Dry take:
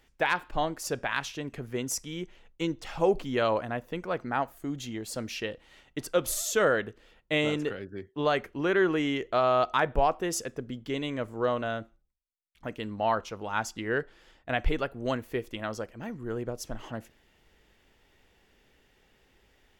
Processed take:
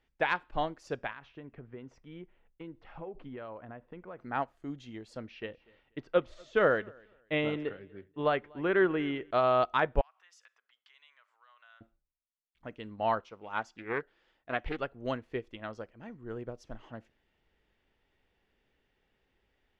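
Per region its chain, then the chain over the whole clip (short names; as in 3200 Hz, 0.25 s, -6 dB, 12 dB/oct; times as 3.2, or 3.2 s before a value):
1.11–4.19 LPF 2100 Hz + compressor, threshold -32 dBFS
5.17–9.31 LPF 3200 Hz + feedback echo 0.243 s, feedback 24%, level -19.5 dB
10.01–11.81 compressor 16:1, threshold -36 dBFS + HPF 1100 Hz 24 dB/oct
13.2–14.79 low shelf 160 Hz -9.5 dB + Doppler distortion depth 0.48 ms
whole clip: LPF 3900 Hz 12 dB/oct; upward expander 1.5:1, over -41 dBFS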